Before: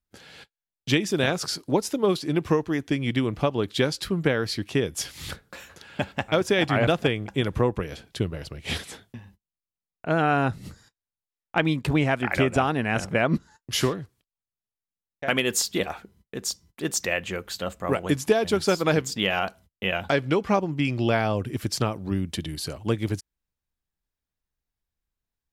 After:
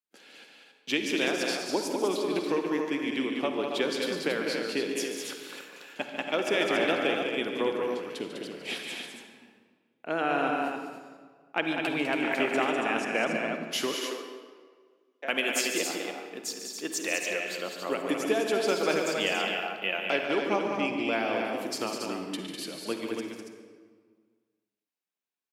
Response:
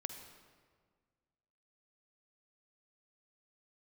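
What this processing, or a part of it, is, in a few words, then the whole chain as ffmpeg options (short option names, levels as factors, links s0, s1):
stadium PA: -filter_complex "[0:a]highpass=f=240:w=0.5412,highpass=f=240:w=1.3066,equalizer=f=2600:t=o:w=0.42:g=5,aecho=1:1:145.8|201.2|279.9:0.316|0.501|0.501[s0];[1:a]atrim=start_sample=2205[s1];[s0][s1]afir=irnorm=-1:irlink=0,asettb=1/sr,asplit=3[s2][s3][s4];[s2]atrim=end=13.944[s5];[s3]atrim=start=13.94:end=15.25,asetpts=PTS-STARTPTS,afade=t=in:d=0.004:c=qsin,afade=t=out:st=1.306:d=0.004:c=qsin,highpass=f=290:w=0.5412,highpass=f=290:w=1.3066[s6];[s4]atrim=start=15.246[s7];[s5][s6]acrossfade=d=0.004:c1=hsin:c2=qsin[s8];[s8][s7]acrossfade=d=0.004:c1=qsin:c2=hsin,volume=0.631"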